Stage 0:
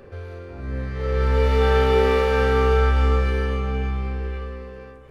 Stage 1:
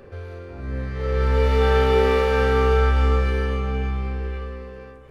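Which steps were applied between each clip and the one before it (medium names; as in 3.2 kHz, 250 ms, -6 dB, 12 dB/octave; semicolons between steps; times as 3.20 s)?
no audible change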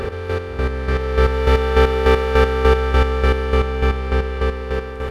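spectral levelling over time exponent 0.4; square tremolo 3.4 Hz, depth 60%, duty 30%; trim +4 dB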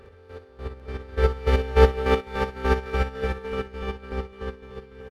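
on a send: multi-tap echo 61/293/339/571/596/798 ms -6.5/-10.5/-10.5/-16.5/-17/-5.5 dB; on the sum: upward expansion 2.5:1, over -21 dBFS; trim -3 dB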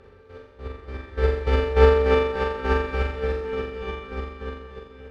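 distance through air 54 m; on a send: flutter echo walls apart 7.3 m, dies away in 0.82 s; on the sum: trim -2 dB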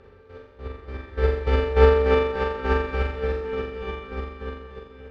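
distance through air 57 m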